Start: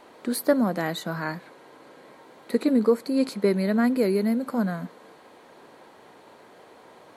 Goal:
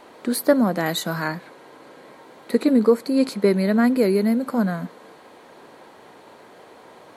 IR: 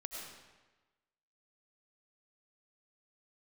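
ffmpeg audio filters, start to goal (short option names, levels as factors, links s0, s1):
-filter_complex "[0:a]asettb=1/sr,asplit=3[s0][s1][s2];[s0]atrim=end=0.864[s3];[s1]atrim=start=0.86:end=1.28,asetpts=PTS-STARTPTS,afade=t=in:d=0.004:c=qsin,afade=t=out:st=0.416:d=0.004:c=qsin,highshelf=f=4100:g=8.5[s4];[s2]atrim=start=1.276[s5];[s3][s4]acrossfade=d=0.004:c1=hsin:c2=qsin[s6];[s6][s5]acrossfade=d=0.004:c1=qsin:c2=hsin,volume=1.58"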